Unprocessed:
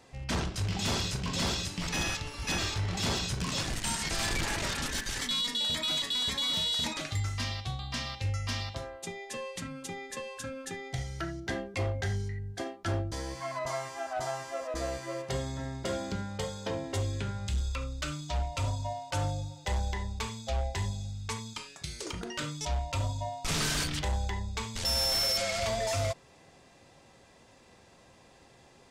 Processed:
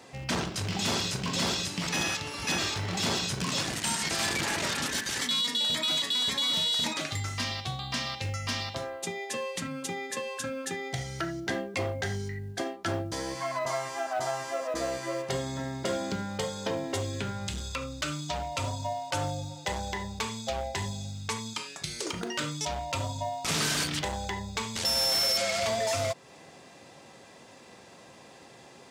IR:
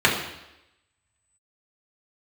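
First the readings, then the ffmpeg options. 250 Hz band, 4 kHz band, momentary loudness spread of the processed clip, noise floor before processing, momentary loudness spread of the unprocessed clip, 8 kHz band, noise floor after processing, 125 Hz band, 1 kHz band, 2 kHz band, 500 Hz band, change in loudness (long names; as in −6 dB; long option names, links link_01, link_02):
+3.0 dB, +3.0 dB, 9 LU, −58 dBFS, 10 LU, +3.5 dB, −52 dBFS, −2.5 dB, +3.5 dB, +3.5 dB, +3.5 dB, +2.5 dB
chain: -filter_complex "[0:a]highpass=140,asplit=2[link_01][link_02];[link_02]acompressor=threshold=-40dB:ratio=6,volume=2dB[link_03];[link_01][link_03]amix=inputs=2:normalize=0,acrusher=bits=9:mode=log:mix=0:aa=0.000001"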